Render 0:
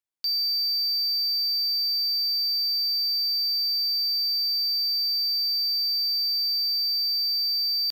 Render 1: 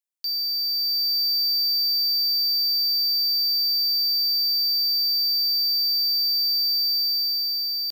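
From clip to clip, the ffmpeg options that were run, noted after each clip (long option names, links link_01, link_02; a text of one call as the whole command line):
ffmpeg -i in.wav -af "highpass=frequency=560:width=0.5412,highpass=frequency=560:width=1.3066,highshelf=frequency=3900:gain=10,dynaudnorm=framelen=240:gausssize=7:maxgain=4dB,volume=-7dB" out.wav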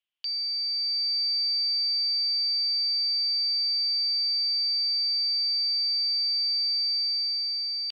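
ffmpeg -i in.wav -af "lowpass=frequency=3000:width_type=q:width=6.7" out.wav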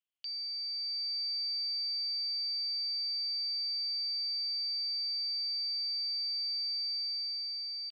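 ffmpeg -i in.wav -filter_complex "[0:a]asplit=2[link_01][link_02];[link_02]adelay=220,highpass=300,lowpass=3400,asoftclip=type=hard:threshold=-30.5dB,volume=-29dB[link_03];[link_01][link_03]amix=inputs=2:normalize=0,volume=-8.5dB" out.wav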